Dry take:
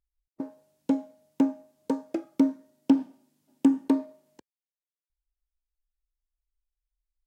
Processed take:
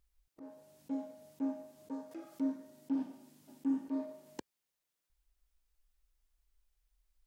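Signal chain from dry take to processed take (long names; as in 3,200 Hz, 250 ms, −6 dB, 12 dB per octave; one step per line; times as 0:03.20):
volume swells 413 ms
0:02.11–0:02.52: one half of a high-frequency compander encoder only
level +9 dB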